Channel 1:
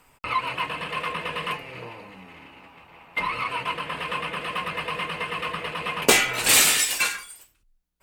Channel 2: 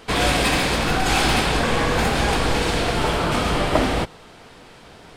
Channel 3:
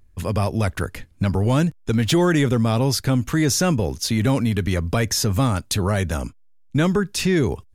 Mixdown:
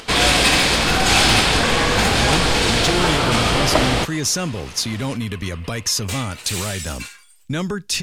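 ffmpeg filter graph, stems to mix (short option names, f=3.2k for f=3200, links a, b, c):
-filter_complex "[0:a]asoftclip=type=tanh:threshold=-10dB,volume=-15.5dB[a];[1:a]acompressor=mode=upward:threshold=-39dB:ratio=2.5,volume=1dB[b];[2:a]alimiter=limit=-14dB:level=0:latency=1:release=218,adelay=750,volume=-2.5dB[c];[a][b][c]amix=inputs=3:normalize=0,equalizer=f=5.3k:t=o:w=2.7:g=7.5"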